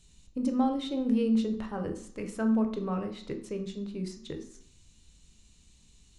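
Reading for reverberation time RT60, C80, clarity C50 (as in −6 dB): 0.60 s, 13.5 dB, 10.0 dB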